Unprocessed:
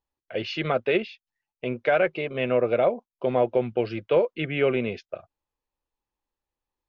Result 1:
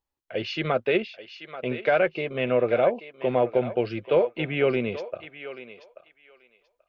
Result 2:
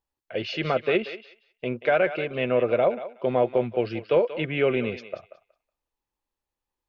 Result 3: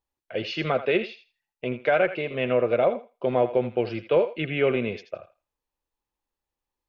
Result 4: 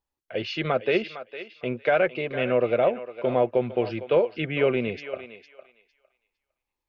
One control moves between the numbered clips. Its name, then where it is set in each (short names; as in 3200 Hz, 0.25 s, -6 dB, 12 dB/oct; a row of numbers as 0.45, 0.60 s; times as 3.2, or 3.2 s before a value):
thinning echo, time: 834, 184, 82, 456 ms